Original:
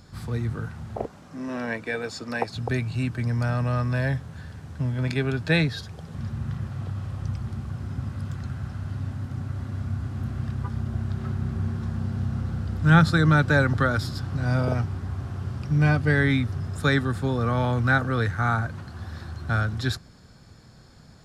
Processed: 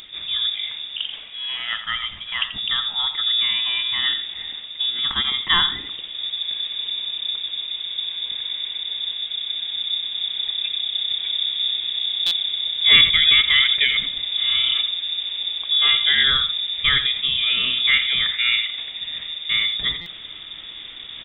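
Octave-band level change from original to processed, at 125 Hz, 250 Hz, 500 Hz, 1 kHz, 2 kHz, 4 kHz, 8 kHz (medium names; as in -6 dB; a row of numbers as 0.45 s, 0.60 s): -23.0 dB, under -15 dB, under -15 dB, -4.0 dB, +5.0 dB, +24.5 dB, no reading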